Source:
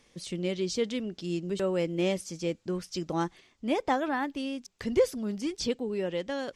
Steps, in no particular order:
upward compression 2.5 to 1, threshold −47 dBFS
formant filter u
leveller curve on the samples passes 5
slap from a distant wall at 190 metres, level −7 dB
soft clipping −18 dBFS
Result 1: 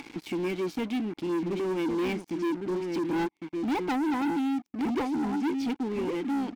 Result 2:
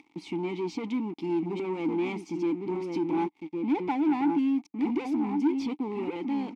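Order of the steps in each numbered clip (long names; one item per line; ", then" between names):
formant filter, then upward compression, then slap from a distant wall, then leveller curve on the samples, then soft clipping
slap from a distant wall, then upward compression, then leveller curve on the samples, then formant filter, then soft clipping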